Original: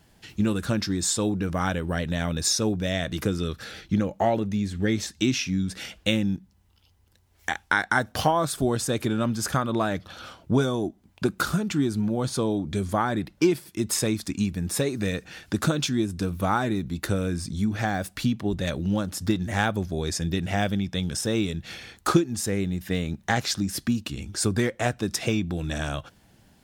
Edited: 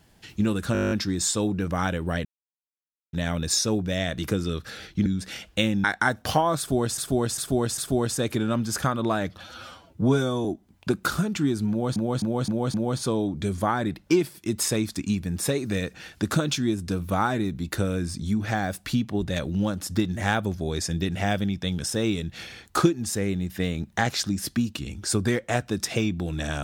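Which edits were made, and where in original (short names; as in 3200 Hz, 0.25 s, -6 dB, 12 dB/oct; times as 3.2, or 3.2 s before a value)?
0.73 stutter 0.02 s, 10 plays
2.07 insert silence 0.88 s
4–5.55 cut
6.33–7.74 cut
8.48–8.88 loop, 4 plays
10.1–10.8 stretch 1.5×
12.05–12.31 loop, 5 plays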